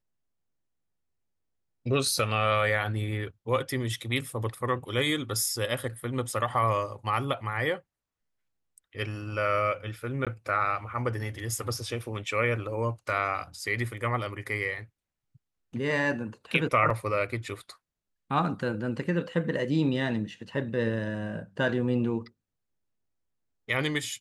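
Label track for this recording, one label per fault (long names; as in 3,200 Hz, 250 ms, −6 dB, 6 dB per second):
10.250000	10.270000	drop-out 17 ms
16.900000	16.900000	drop-out 4 ms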